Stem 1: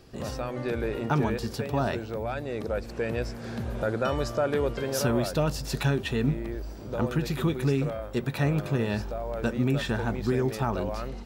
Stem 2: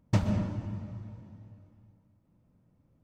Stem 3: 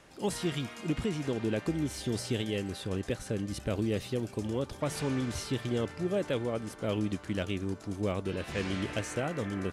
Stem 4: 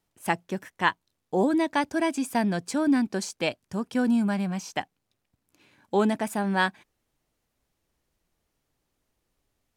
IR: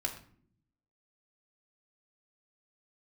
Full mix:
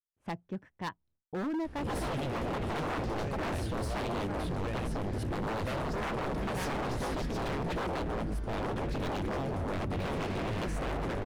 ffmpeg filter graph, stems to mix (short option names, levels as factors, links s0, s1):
-filter_complex "[0:a]acontrast=28,adelay=1650,volume=0.2,asplit=2[s0][s1];[s1]volume=0.282[s2];[1:a]adelay=2200,volume=0.211[s3];[2:a]aexciter=amount=2.3:drive=8.6:freq=9300,adelay=1650,volume=0.794[s4];[3:a]agate=range=0.0224:threshold=0.00251:ratio=3:detection=peak,lowpass=f=1900:p=1,volume=0.282[s5];[4:a]atrim=start_sample=2205[s6];[s2][s6]afir=irnorm=-1:irlink=0[s7];[s0][s3][s4][s5][s7]amix=inputs=5:normalize=0,aemphasis=mode=reproduction:type=bsi,aeval=exprs='0.0376*(abs(mod(val(0)/0.0376+3,4)-2)-1)':c=same"